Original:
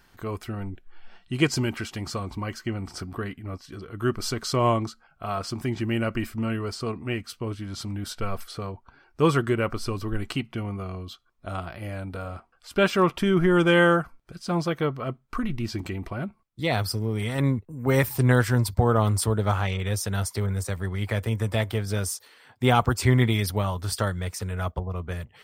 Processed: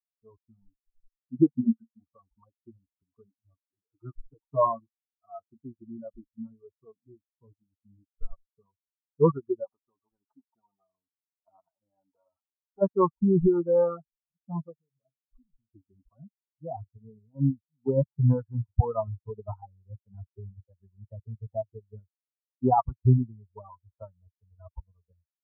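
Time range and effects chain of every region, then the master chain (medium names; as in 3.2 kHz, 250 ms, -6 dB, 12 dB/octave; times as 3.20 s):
1.33–2.04 s: doubling 22 ms -9 dB + small resonant body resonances 230/730 Hz, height 8 dB, ringing for 70 ms
3.81–4.65 s: peaking EQ 180 Hz -13 dB 0.39 oct + comb 6.5 ms, depth 70%
9.64–12.82 s: high-pass 180 Hz 6 dB/octave + spectrum-flattening compressor 2:1
14.73–15.68 s: peaking EQ 3.7 kHz -13 dB 2.9 oct + compression 12:1, threshold -32 dBFS + flutter echo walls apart 7.6 m, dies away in 0.23 s
whole clip: expander on every frequency bin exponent 3; reverb removal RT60 2 s; steep low-pass 1.1 kHz 72 dB/octave; trim +5 dB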